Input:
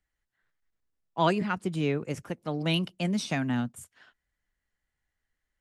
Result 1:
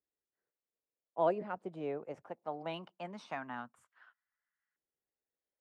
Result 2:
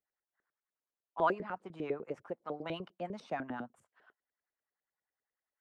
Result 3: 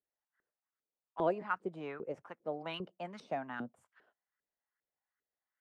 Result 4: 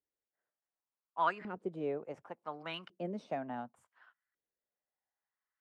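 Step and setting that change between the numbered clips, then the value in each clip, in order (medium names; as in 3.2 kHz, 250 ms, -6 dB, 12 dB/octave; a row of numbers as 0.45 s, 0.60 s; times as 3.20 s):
LFO band-pass, rate: 0.21 Hz, 10 Hz, 2.5 Hz, 0.69 Hz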